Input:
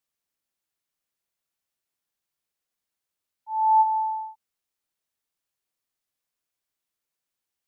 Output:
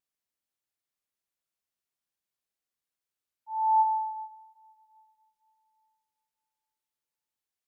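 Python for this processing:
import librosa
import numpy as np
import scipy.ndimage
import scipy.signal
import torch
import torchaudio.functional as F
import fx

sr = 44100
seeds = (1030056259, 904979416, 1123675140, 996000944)

y = fx.vibrato(x, sr, rate_hz=0.64, depth_cents=6.4)
y = fx.rev_plate(y, sr, seeds[0], rt60_s=2.9, hf_ratio=0.8, predelay_ms=0, drr_db=16.0)
y = y * librosa.db_to_amplitude(-5.5)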